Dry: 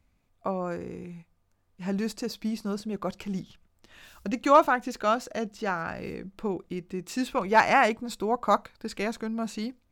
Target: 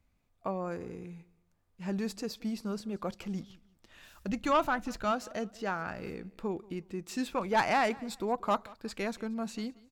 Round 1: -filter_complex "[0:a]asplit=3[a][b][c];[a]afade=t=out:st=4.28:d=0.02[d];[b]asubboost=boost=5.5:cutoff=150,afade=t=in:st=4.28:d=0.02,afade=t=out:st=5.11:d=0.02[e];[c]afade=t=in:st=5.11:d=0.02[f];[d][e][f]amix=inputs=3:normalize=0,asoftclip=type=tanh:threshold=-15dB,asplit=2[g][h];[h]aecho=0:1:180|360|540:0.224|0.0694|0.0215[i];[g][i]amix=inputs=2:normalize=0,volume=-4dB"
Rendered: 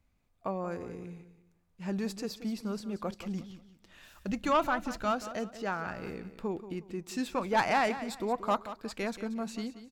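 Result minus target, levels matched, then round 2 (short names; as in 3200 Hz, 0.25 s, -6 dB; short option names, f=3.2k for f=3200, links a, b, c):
echo-to-direct +9.5 dB
-filter_complex "[0:a]asplit=3[a][b][c];[a]afade=t=out:st=4.28:d=0.02[d];[b]asubboost=boost=5.5:cutoff=150,afade=t=in:st=4.28:d=0.02,afade=t=out:st=5.11:d=0.02[e];[c]afade=t=in:st=5.11:d=0.02[f];[d][e][f]amix=inputs=3:normalize=0,asoftclip=type=tanh:threshold=-15dB,asplit=2[g][h];[h]aecho=0:1:180|360:0.075|0.0232[i];[g][i]amix=inputs=2:normalize=0,volume=-4dB"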